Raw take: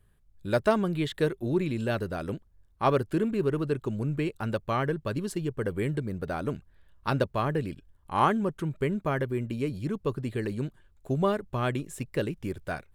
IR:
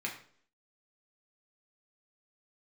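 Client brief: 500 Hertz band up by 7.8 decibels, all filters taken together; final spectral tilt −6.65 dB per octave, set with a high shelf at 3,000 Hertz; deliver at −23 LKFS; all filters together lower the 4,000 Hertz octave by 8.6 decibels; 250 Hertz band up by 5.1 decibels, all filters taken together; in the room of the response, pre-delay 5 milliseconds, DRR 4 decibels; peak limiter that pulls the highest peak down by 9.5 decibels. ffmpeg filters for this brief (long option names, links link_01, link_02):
-filter_complex "[0:a]equalizer=frequency=250:width_type=o:gain=4,equalizer=frequency=500:width_type=o:gain=9,highshelf=frequency=3000:gain=-8.5,equalizer=frequency=4000:width_type=o:gain=-5.5,alimiter=limit=-16dB:level=0:latency=1,asplit=2[link_01][link_02];[1:a]atrim=start_sample=2205,adelay=5[link_03];[link_02][link_03]afir=irnorm=-1:irlink=0,volume=-7.5dB[link_04];[link_01][link_04]amix=inputs=2:normalize=0,volume=2.5dB"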